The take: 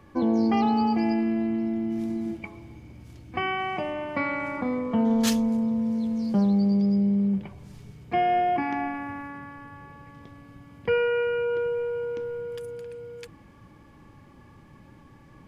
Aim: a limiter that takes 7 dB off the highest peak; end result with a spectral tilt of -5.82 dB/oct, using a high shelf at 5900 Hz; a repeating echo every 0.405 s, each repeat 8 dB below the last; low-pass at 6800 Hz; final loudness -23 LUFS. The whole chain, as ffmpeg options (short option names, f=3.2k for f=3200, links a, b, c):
-af "lowpass=6.8k,highshelf=f=5.9k:g=7,alimiter=limit=-18.5dB:level=0:latency=1,aecho=1:1:405|810|1215|1620|2025:0.398|0.159|0.0637|0.0255|0.0102,volume=2.5dB"